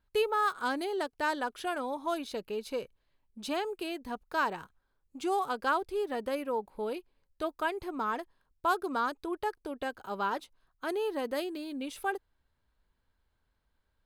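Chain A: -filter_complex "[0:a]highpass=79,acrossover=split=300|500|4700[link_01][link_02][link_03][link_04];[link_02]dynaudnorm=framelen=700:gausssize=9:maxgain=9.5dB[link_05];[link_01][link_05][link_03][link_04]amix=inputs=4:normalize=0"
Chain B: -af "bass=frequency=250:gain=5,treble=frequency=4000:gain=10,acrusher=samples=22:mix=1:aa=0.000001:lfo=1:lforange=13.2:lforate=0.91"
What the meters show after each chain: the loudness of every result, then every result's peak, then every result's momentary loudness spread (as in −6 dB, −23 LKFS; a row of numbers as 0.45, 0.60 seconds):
−31.5, −33.0 LKFS; −14.5, −15.5 dBFS; 9, 8 LU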